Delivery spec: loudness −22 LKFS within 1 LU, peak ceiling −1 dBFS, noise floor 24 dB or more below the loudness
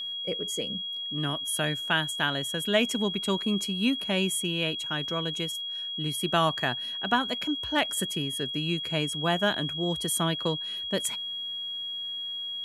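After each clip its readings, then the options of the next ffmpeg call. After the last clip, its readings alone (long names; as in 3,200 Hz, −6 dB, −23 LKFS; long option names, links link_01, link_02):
interfering tone 3,300 Hz; level of the tone −32 dBFS; integrated loudness −28.0 LKFS; sample peak −10.0 dBFS; target loudness −22.0 LKFS
→ -af "bandreject=frequency=3300:width=30"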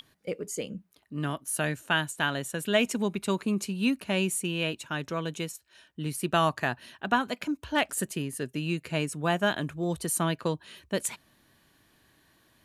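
interfering tone none found; integrated loudness −30.0 LKFS; sample peak −10.5 dBFS; target loudness −22.0 LKFS
→ -af "volume=8dB"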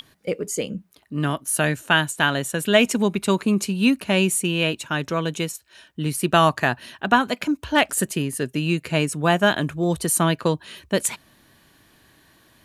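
integrated loudness −22.0 LKFS; sample peak −2.5 dBFS; background noise floor −58 dBFS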